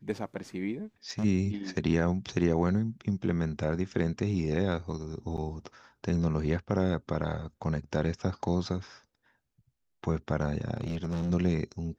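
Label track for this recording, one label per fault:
1.100000	1.250000	clipping −27 dBFS
5.370000	5.380000	drop-out 7.4 ms
10.740000	11.310000	clipping −27.5 dBFS

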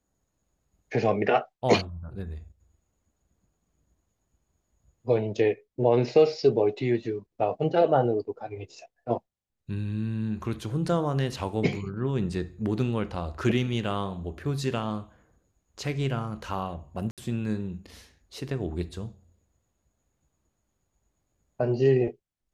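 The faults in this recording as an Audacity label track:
17.110000	17.180000	drop-out 67 ms

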